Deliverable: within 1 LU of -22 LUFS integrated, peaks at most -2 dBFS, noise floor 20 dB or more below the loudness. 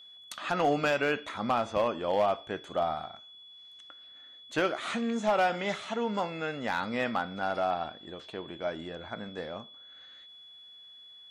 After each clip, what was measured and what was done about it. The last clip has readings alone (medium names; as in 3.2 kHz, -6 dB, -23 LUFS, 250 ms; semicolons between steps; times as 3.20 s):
clipped samples 0.4%; clipping level -19.5 dBFS; steady tone 3.4 kHz; tone level -49 dBFS; loudness -31.0 LUFS; peak level -19.5 dBFS; loudness target -22.0 LUFS
-> clip repair -19.5 dBFS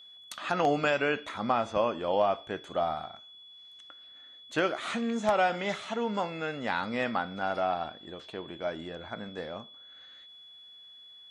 clipped samples 0.0%; steady tone 3.4 kHz; tone level -49 dBFS
-> band-stop 3.4 kHz, Q 30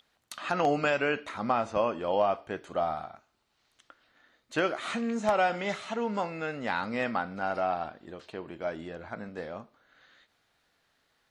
steady tone not found; loudness -31.0 LUFS; peak level -11.5 dBFS; loudness target -22.0 LUFS
-> trim +9 dB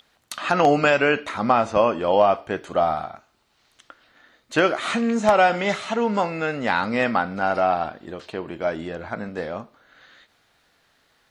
loudness -22.0 LUFS; peak level -2.5 dBFS; noise floor -64 dBFS